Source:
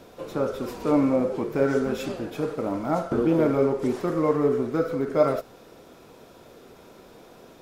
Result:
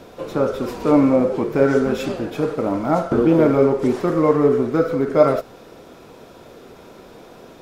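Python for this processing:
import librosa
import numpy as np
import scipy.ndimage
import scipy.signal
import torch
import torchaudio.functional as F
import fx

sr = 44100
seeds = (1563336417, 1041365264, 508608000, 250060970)

y = fx.high_shelf(x, sr, hz=6600.0, db=-5.0)
y = y * librosa.db_to_amplitude(6.5)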